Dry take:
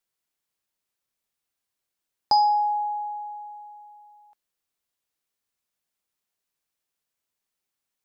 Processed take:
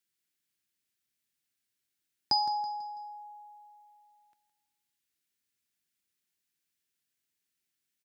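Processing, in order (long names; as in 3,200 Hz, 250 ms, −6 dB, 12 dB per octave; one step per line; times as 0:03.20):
high-pass filter 71 Hz
flat-topped bell 750 Hz −11 dB
repeating echo 164 ms, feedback 40%, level −12 dB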